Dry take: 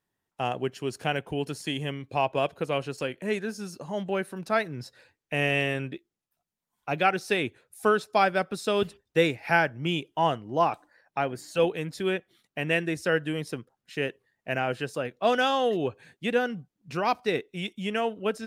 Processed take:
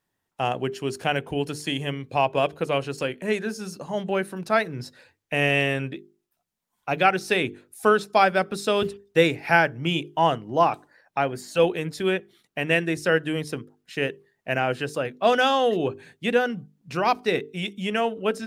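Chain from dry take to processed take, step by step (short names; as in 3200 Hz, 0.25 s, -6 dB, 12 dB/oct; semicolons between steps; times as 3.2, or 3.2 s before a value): notches 50/100/150/200/250/300/350/400/450 Hz; gain +4 dB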